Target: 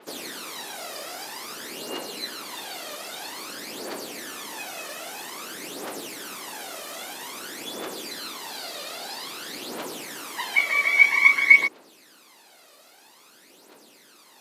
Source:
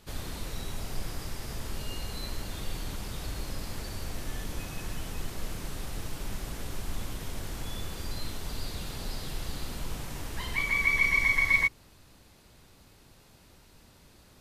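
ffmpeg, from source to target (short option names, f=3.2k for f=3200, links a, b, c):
-af "aphaser=in_gain=1:out_gain=1:delay=1.7:decay=0.63:speed=0.51:type=triangular,highpass=f=300:w=0.5412,highpass=f=300:w=1.3066,adynamicequalizer=threshold=0.00631:dfrequency=5300:dqfactor=0.7:tfrequency=5300:tqfactor=0.7:attack=5:release=100:ratio=0.375:range=3:mode=cutabove:tftype=highshelf,volume=5.5dB"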